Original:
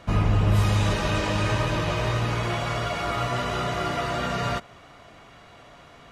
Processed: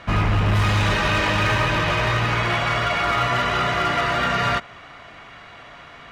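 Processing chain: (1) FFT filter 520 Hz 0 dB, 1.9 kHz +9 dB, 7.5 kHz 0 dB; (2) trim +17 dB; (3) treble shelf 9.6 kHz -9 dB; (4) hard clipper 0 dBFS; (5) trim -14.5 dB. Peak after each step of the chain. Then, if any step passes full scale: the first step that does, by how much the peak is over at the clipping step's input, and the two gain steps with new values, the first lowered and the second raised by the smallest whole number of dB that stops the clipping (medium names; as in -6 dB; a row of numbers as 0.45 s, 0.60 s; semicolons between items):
-8.0 dBFS, +9.0 dBFS, +9.0 dBFS, 0.0 dBFS, -14.5 dBFS; step 2, 9.0 dB; step 2 +8 dB, step 5 -5.5 dB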